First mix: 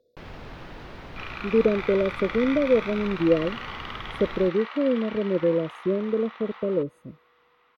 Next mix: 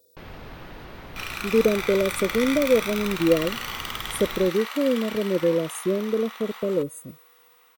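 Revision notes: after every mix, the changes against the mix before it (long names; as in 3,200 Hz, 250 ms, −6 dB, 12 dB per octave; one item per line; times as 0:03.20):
first sound: add high-frequency loss of the air 290 metres
second sound: add high-shelf EQ 11,000 Hz +9.5 dB
master: remove high-frequency loss of the air 310 metres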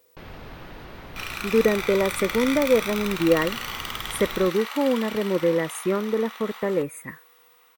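speech: remove linear-phase brick-wall band-stop 700–3,400 Hz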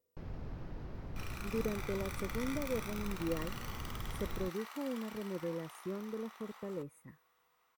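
speech −10.5 dB
master: add drawn EQ curve 110 Hz 0 dB, 3,500 Hz −19 dB, 5,200 Hz −13 dB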